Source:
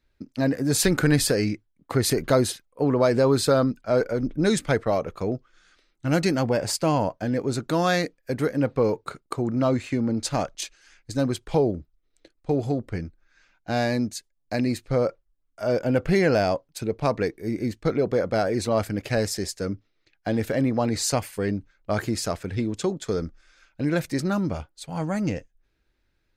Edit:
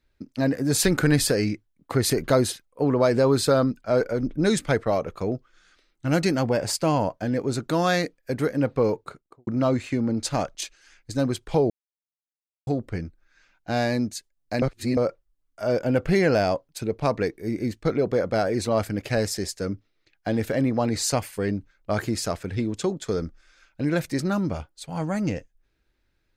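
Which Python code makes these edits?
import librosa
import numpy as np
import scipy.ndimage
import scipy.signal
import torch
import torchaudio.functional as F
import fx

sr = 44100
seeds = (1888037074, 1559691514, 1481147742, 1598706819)

y = fx.studio_fade_out(x, sr, start_s=8.88, length_s=0.59)
y = fx.edit(y, sr, fx.silence(start_s=11.7, length_s=0.97),
    fx.reverse_span(start_s=14.62, length_s=0.35), tone=tone)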